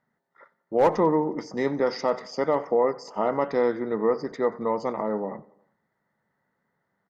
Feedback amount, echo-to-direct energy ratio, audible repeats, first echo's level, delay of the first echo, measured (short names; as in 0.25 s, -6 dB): 58%, -21.0 dB, 3, -22.5 dB, 91 ms